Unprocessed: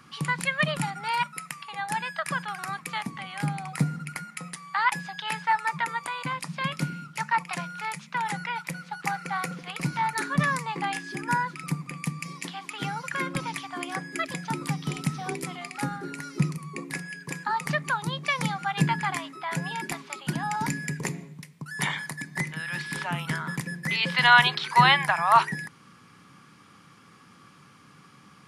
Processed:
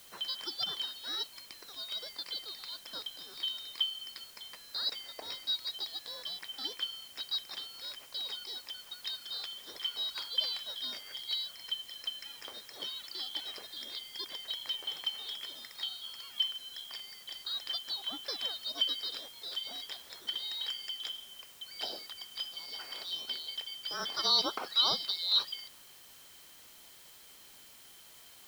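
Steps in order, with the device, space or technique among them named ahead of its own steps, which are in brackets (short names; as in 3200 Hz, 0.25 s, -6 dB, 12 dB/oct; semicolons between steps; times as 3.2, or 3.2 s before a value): split-band scrambled radio (four-band scrambler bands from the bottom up 3412; BPF 400–3200 Hz; white noise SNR 17 dB); gain -5 dB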